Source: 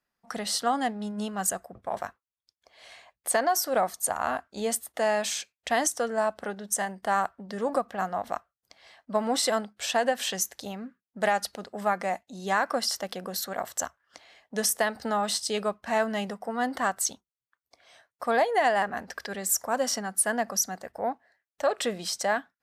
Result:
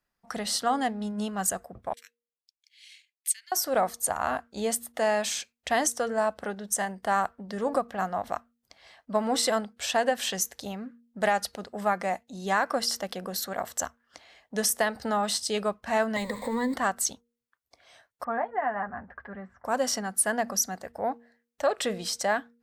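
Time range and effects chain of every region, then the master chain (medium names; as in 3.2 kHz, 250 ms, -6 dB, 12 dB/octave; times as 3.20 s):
1.93–3.52 s: steep high-pass 2.2 kHz + transient shaper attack +2 dB, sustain -11 dB
16.16–16.74 s: jump at every zero crossing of -37.5 dBFS + rippled EQ curve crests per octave 1, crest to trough 18 dB + compression, threshold -25 dBFS
18.24–19.65 s: low-pass 1.6 kHz 24 dB/octave + peaking EQ 420 Hz -9 dB 1.4 oct + comb of notches 160 Hz
whole clip: bass shelf 82 Hz +9.5 dB; de-hum 235.8 Hz, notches 2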